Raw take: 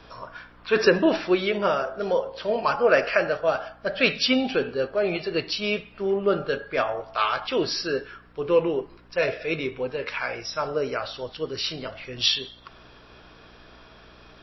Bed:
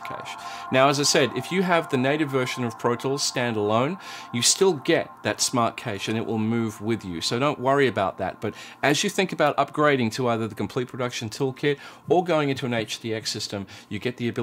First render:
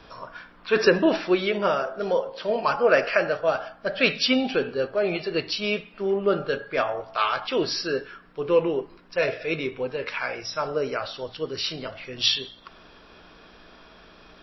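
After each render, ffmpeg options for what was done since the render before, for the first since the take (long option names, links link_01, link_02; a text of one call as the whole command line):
ffmpeg -i in.wav -af "bandreject=frequency=60:width_type=h:width=4,bandreject=frequency=120:width_type=h:width=4" out.wav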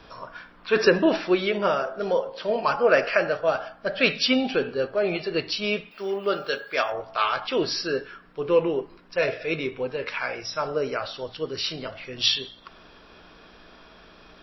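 ffmpeg -i in.wav -filter_complex "[0:a]asettb=1/sr,asplit=3[link_01][link_02][link_03];[link_01]atrim=end=5.914[link_04];[link_02]atrim=start=5.91:end=6.92,asetpts=PTS-STARTPTS,afade=type=in:duration=0.004:curve=qsin,afade=type=out:start_time=1.006:duration=0.004:curve=qsin,aemphasis=mode=production:type=riaa[link_05];[link_03]atrim=start=6.916[link_06];[link_04][link_05]acrossfade=duration=0.004:curve1=hsin:curve2=qsin[link_07];[link_07][link_06]acrossfade=duration=0.004:curve1=qsin:curve2=hsin" out.wav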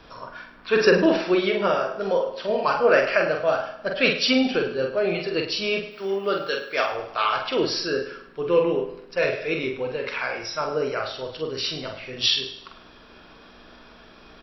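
ffmpeg -i in.wav -filter_complex "[0:a]asplit=2[link_01][link_02];[link_02]adelay=46,volume=-5dB[link_03];[link_01][link_03]amix=inputs=2:normalize=0,aecho=1:1:104|208|312|416:0.224|0.0918|0.0376|0.0154" out.wav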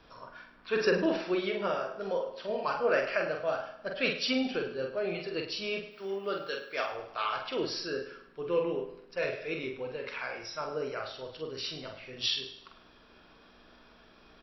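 ffmpeg -i in.wav -af "volume=-9.5dB" out.wav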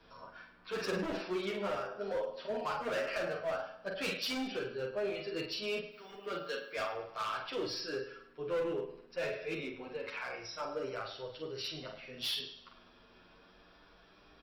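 ffmpeg -i in.wav -filter_complex "[0:a]acrossover=split=140[link_01][link_02];[link_02]asoftclip=type=hard:threshold=-29dB[link_03];[link_01][link_03]amix=inputs=2:normalize=0,asplit=2[link_04][link_05];[link_05]adelay=8.8,afreqshift=0.31[link_06];[link_04][link_06]amix=inputs=2:normalize=1" out.wav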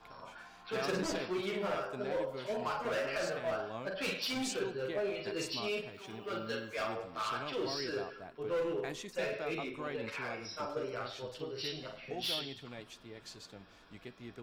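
ffmpeg -i in.wav -i bed.wav -filter_complex "[1:a]volume=-22dB[link_01];[0:a][link_01]amix=inputs=2:normalize=0" out.wav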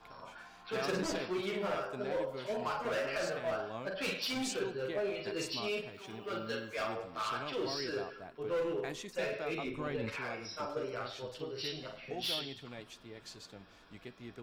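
ffmpeg -i in.wav -filter_complex "[0:a]asettb=1/sr,asplit=3[link_01][link_02][link_03];[link_01]atrim=end=9.654[link_04];[link_02]atrim=start=9.65:end=10.16,asetpts=PTS-STARTPTS,afade=type=in:duration=0.004:curve=qsin,afade=type=out:start_time=0.506:duration=0.004:curve=qsin,lowshelf=frequency=190:gain=11[link_05];[link_03]atrim=start=10.156[link_06];[link_04][link_05]acrossfade=duration=0.004:curve1=hsin:curve2=qsin[link_07];[link_07][link_06]acrossfade=duration=0.004:curve1=qsin:curve2=hsin" out.wav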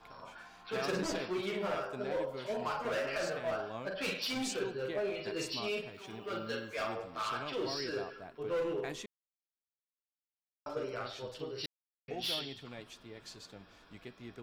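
ffmpeg -i in.wav -filter_complex "[0:a]asplit=5[link_01][link_02][link_03][link_04][link_05];[link_01]atrim=end=9.06,asetpts=PTS-STARTPTS,afade=type=out:start_time=9.056:duration=0.004:curve=hsin[link_06];[link_02]atrim=start=9.06:end=10.66,asetpts=PTS-STARTPTS,volume=0[link_07];[link_03]atrim=start=10.66:end=11.66,asetpts=PTS-STARTPTS,afade=type=in:duration=0.004:curve=hsin,afade=type=out:start_time=0.996:duration=0.004:curve=hsin[link_08];[link_04]atrim=start=11.66:end=12.08,asetpts=PTS-STARTPTS,volume=0[link_09];[link_05]atrim=start=12.08,asetpts=PTS-STARTPTS,afade=type=in:duration=0.004:curve=hsin[link_10];[link_06][link_07][link_08][link_09][link_10]concat=n=5:v=0:a=1" out.wav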